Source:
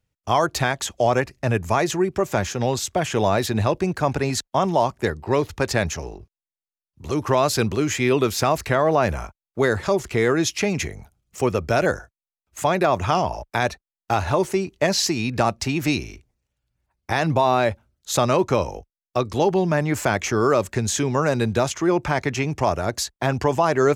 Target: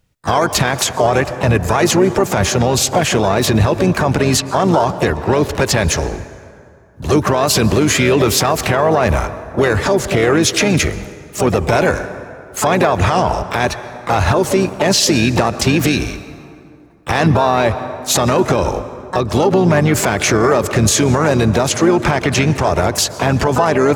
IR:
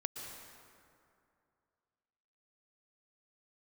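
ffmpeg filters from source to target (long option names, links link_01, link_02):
-filter_complex "[0:a]asplit=4[link_01][link_02][link_03][link_04];[link_02]asetrate=29433,aresample=44100,atempo=1.49831,volume=-11dB[link_05];[link_03]asetrate=52444,aresample=44100,atempo=0.840896,volume=-17dB[link_06];[link_04]asetrate=66075,aresample=44100,atempo=0.66742,volume=-12dB[link_07];[link_01][link_05][link_06][link_07]amix=inputs=4:normalize=0,asplit=2[link_08][link_09];[1:a]atrim=start_sample=2205[link_10];[link_09][link_10]afir=irnorm=-1:irlink=0,volume=-13dB[link_11];[link_08][link_11]amix=inputs=2:normalize=0,alimiter=level_in=13.5dB:limit=-1dB:release=50:level=0:latency=1,volume=-3dB"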